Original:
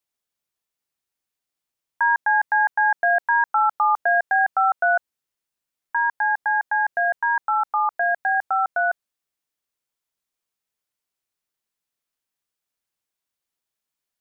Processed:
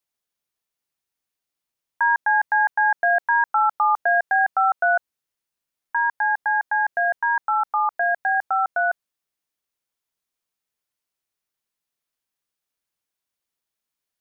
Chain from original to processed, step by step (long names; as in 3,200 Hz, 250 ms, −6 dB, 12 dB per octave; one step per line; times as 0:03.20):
notch filter 7,600 Hz, Q 23